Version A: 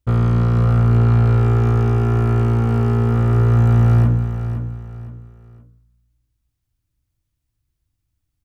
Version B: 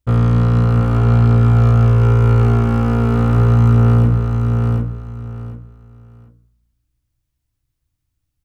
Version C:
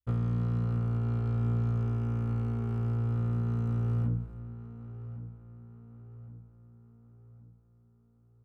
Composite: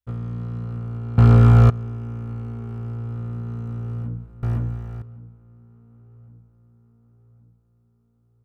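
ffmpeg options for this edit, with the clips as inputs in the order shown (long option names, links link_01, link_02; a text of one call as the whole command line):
ffmpeg -i take0.wav -i take1.wav -i take2.wav -filter_complex "[2:a]asplit=3[link_01][link_02][link_03];[link_01]atrim=end=1.182[link_04];[1:a]atrim=start=1.178:end=1.702[link_05];[link_02]atrim=start=1.698:end=4.432[link_06];[0:a]atrim=start=4.428:end=5.022[link_07];[link_03]atrim=start=5.018[link_08];[link_04][link_05]acrossfade=duration=0.004:curve1=hsin:curve2=hsin[link_09];[link_09][link_06]acrossfade=duration=0.004:curve1=hsin:curve2=hsin[link_10];[link_10][link_07]acrossfade=duration=0.004:curve1=hsin:curve2=hsin[link_11];[link_11][link_08]acrossfade=duration=0.004:curve1=hsin:curve2=hsin" out.wav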